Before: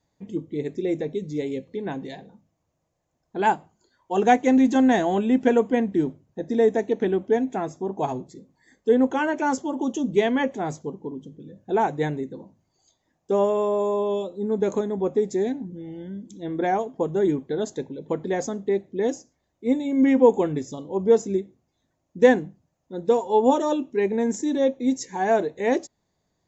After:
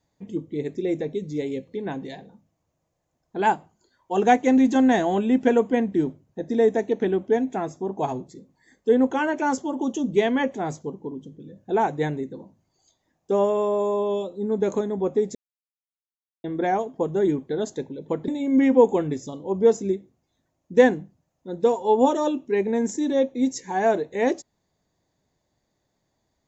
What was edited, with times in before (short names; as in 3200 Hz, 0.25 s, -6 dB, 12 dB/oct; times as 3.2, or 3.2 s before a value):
15.35–16.44 mute
18.28–19.73 cut